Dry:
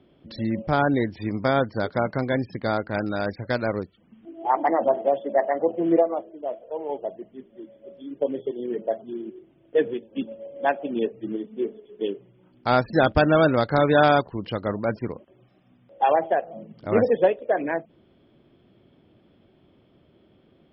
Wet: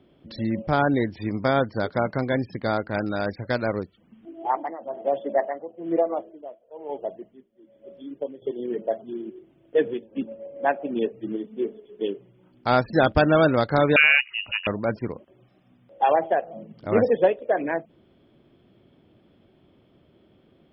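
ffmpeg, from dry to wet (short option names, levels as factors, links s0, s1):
-filter_complex "[0:a]asettb=1/sr,asplit=3[s0][s1][s2];[s0]atrim=end=4.354[s3];[s1]atrim=start=4.35:end=8.42,asetpts=PTS-STARTPTS,afade=t=in:d=0.004:c=qsin,afade=t=out:st=4.066:d=0.004:c=qsin,tremolo=f=1.1:d=0.85[s4];[s2]atrim=start=8.416[s5];[s3][s4]acrossfade=d=0.004:c1=hsin:c2=qsin[s6];[s6][s5]acrossfade=d=0.004:c1=qsin:c2=hsin,asettb=1/sr,asplit=3[s7][s8][s9];[s7]atrim=end=10.054[s10];[s8]atrim=start=10.05:end=10.96,asetpts=PTS-STARTPTS,afade=t=in:d=0.004:c=qsin,afade=t=out:st=0.906:d=0.004:c=qsin,lowpass=f=2600:w=0.5412,lowpass=f=2600:w=1.3066[s11];[s9]atrim=start=10.956[s12];[s10][s11]acrossfade=d=0.004:c1=hsin:c2=qsin[s13];[s13][s12]acrossfade=d=0.004:c1=qsin:c2=hsin,asettb=1/sr,asplit=3[s14][s15][s16];[s14]atrim=end=13.964[s17];[s15]atrim=start=13.96:end=14.67,asetpts=PTS-STARTPTS,afade=t=in:d=0.004:c=qsin,afade=t=out:st=0.706:d=0.004:c=qsin,lowpass=f=2600:t=q:w=0.5098,lowpass=f=2600:t=q:w=0.6013,lowpass=f=2600:t=q:w=0.9,lowpass=f=2600:t=q:w=2.563,afreqshift=-3000[s18];[s16]atrim=start=14.666[s19];[s17][s18]acrossfade=d=0.004:c1=hsin:c2=qsin[s20];[s20][s19]acrossfade=d=0.004:c1=qsin:c2=hsin"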